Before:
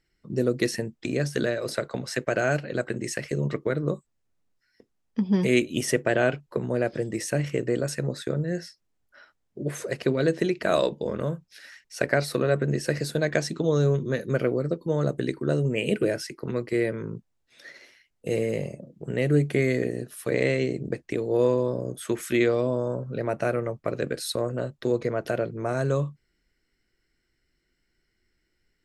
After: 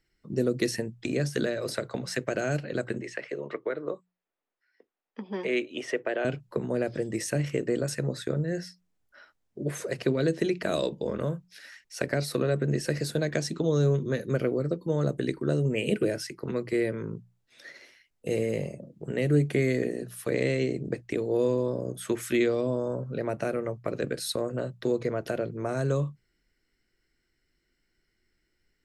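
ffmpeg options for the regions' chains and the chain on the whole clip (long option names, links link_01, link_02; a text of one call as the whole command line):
ffmpeg -i in.wav -filter_complex "[0:a]asettb=1/sr,asplit=3[link_01][link_02][link_03];[link_01]atrim=end=3.014[link_04];[link_02]atrim=start=3.01:end=6.25,asetpts=PTS-STARTPTS,afade=type=in:duration=0.004:curve=qsin,afade=type=out:start_time=3.236:duration=0.004:curve=qsin,lowpass=6800,acrossover=split=330 3300:gain=0.0708 1 0.224[link_05][link_06][link_07];[link_05][link_06][link_07]amix=inputs=3:normalize=0[link_08];[link_03]atrim=start=6.246[link_09];[link_04][link_08]acrossfade=duration=0.004:curve1=hsin:curve2=qsin[link_10];[link_10][link_09]acrossfade=duration=0.004:curve1=qsin:curve2=hsin,bandreject=frequency=60:width_type=h:width=6,bandreject=frequency=120:width_type=h:width=6,bandreject=frequency=180:width_type=h:width=6,acrossover=split=460|3000[link_11][link_12][link_13];[link_12]acompressor=threshold=-30dB:ratio=6[link_14];[link_11][link_14][link_13]amix=inputs=3:normalize=0,volume=-1dB" out.wav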